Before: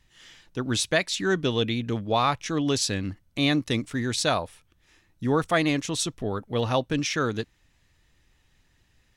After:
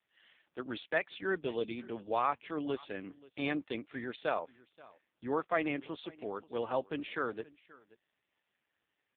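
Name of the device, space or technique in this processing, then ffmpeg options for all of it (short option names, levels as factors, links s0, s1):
satellite phone: -filter_complex "[0:a]asettb=1/sr,asplit=3[s0][s1][s2];[s0]atrim=end=1.384[s3];[s1]atrim=start=1.38:end=1.78,asetpts=PTS-STARTPTS,afade=t=in:d=0.004:c=qsin,afade=t=out:st=0.396:d=0.004:c=qsin,equalizer=f=1700:t=o:w=0.92:g=-6[s4];[s2]atrim=start=1.776[s5];[s3][s4]acrossfade=d=0.004:c1=hsin:c2=qsin[s6];[s6][s5]acrossfade=d=0.004:c1=qsin:c2=hsin,highpass=330,lowpass=3200,aecho=1:1:529:0.0794,volume=0.473" -ar 8000 -c:a libopencore_amrnb -b:a 5150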